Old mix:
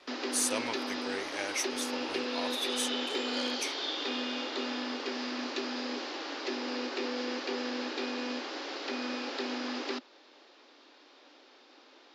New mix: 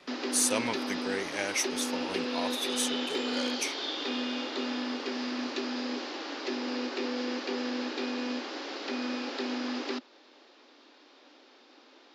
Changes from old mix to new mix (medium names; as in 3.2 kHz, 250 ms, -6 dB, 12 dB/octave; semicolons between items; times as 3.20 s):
speech +3.5 dB; master: add peaking EQ 160 Hz +10.5 dB 0.96 oct